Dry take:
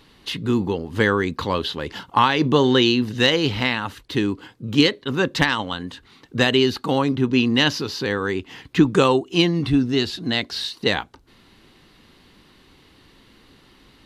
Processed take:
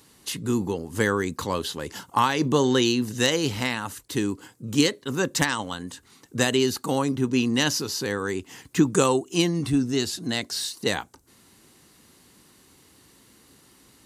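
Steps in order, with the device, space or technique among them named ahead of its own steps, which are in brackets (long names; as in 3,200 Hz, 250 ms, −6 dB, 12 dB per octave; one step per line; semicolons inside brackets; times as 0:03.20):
budget condenser microphone (high-pass filter 69 Hz; high shelf with overshoot 5,300 Hz +13.5 dB, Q 1.5)
level −4 dB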